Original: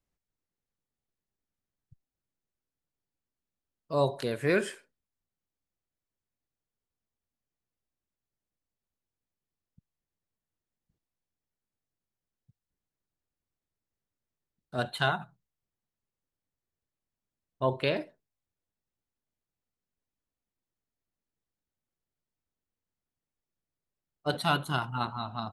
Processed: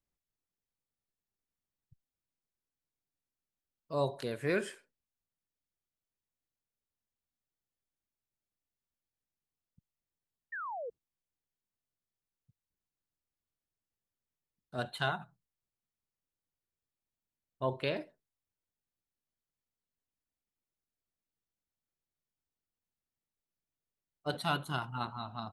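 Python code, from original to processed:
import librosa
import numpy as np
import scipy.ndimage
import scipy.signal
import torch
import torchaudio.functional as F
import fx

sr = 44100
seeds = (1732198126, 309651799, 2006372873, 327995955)

y = fx.spec_paint(x, sr, seeds[0], shape='fall', start_s=10.52, length_s=0.38, low_hz=440.0, high_hz=1900.0, level_db=-34.0)
y = y * librosa.db_to_amplitude(-5.5)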